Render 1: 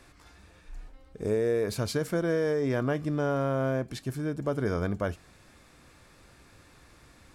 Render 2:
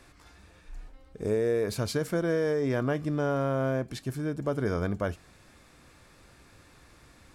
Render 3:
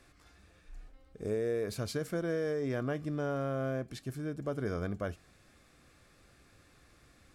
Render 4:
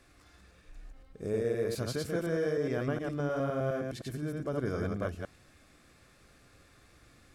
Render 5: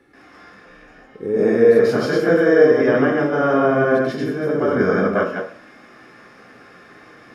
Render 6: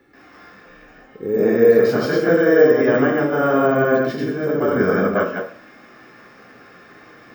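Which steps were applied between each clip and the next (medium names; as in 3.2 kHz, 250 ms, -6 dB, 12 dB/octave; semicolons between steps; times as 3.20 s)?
no audible change
band-stop 930 Hz, Q 6.6; trim -6 dB
chunks repeated in reverse 103 ms, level -2 dB
reverberation RT60 0.50 s, pre-delay 131 ms, DRR -12 dB; trim +1.5 dB
careless resampling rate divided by 2×, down filtered, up hold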